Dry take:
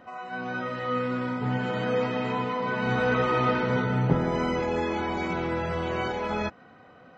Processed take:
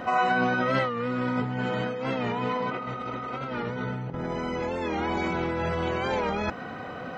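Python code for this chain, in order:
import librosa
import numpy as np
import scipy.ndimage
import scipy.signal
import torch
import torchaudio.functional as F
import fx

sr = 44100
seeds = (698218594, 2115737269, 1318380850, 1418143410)

y = fx.spec_repair(x, sr, seeds[0], start_s=2.73, length_s=0.69, low_hz=200.0, high_hz=3300.0, source='after')
y = fx.over_compress(y, sr, threshold_db=-36.0, ratio=-1.0)
y = fx.record_warp(y, sr, rpm=45.0, depth_cents=100.0)
y = y * librosa.db_to_amplitude(7.0)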